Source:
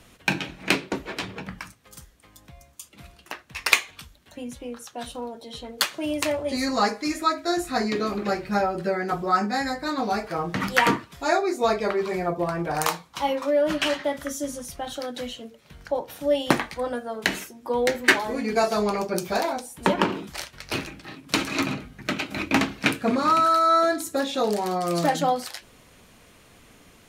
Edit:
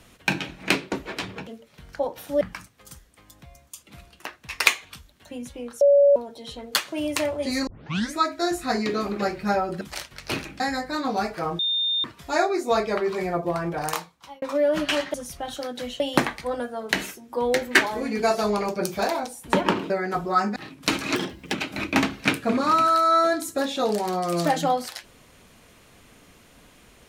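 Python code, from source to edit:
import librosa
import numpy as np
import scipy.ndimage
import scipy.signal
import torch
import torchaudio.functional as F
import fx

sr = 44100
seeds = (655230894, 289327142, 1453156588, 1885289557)

y = fx.edit(x, sr, fx.bleep(start_s=4.87, length_s=0.35, hz=567.0, db=-12.0),
    fx.tape_start(start_s=6.73, length_s=0.48),
    fx.swap(start_s=8.87, length_s=0.66, other_s=20.23, other_length_s=0.79),
    fx.bleep(start_s=10.52, length_s=0.45, hz=3630.0, db=-21.0),
    fx.fade_out_span(start_s=12.59, length_s=0.76),
    fx.cut(start_s=14.07, length_s=0.46),
    fx.move(start_s=15.39, length_s=0.94, to_s=1.47),
    fx.speed_span(start_s=21.61, length_s=0.51, speed=1.32), tone=tone)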